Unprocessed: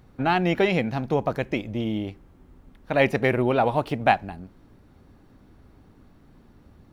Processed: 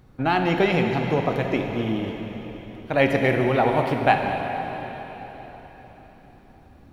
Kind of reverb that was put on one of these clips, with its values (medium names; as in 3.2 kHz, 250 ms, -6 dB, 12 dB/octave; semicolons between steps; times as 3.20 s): plate-style reverb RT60 4.4 s, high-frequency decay 0.95×, DRR 2.5 dB